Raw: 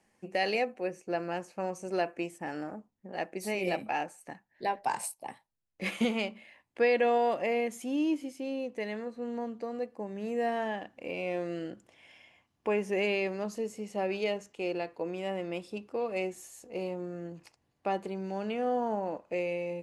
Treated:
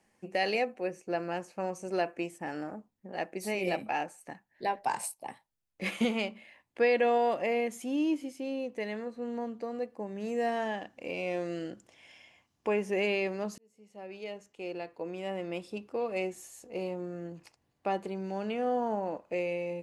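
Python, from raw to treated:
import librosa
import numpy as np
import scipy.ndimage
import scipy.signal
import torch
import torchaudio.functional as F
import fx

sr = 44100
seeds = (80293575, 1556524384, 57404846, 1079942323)

y = fx.peak_eq(x, sr, hz=6100.0, db=6.0, octaves=1.1, at=(10.2, 12.7))
y = fx.edit(y, sr, fx.fade_in_span(start_s=13.58, length_s=2.05), tone=tone)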